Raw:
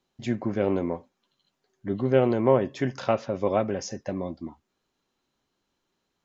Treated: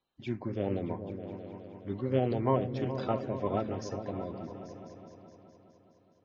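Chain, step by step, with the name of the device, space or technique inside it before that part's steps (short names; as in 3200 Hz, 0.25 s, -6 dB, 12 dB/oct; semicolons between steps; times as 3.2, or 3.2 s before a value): clip after many re-uploads (LPF 5500 Hz 24 dB/oct; bin magnitudes rounded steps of 30 dB); repeats that get brighter 0.209 s, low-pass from 200 Hz, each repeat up 2 oct, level -6 dB; gain -7 dB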